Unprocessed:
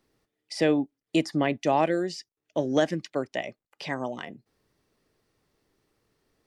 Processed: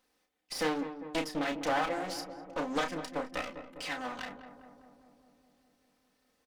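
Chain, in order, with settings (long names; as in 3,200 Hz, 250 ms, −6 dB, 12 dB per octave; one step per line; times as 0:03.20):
lower of the sound and its delayed copy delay 3.9 ms
low-shelf EQ 390 Hz −11.5 dB
in parallel at −1 dB: downward compressor, threshold −38 dBFS, peak gain reduction 14 dB
on the sum: double-tracking delay 32 ms −7 dB
on a send: feedback echo with a low-pass in the loop 201 ms, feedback 73%, low-pass 1,300 Hz, level −10 dB
on the sum: highs frequency-modulated by the lows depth 0.28 ms
level −4.5 dB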